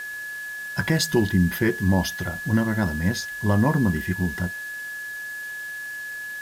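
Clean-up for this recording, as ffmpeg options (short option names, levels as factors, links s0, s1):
-af "adeclick=t=4,bandreject=f=1700:w=30,afwtdn=0.0056"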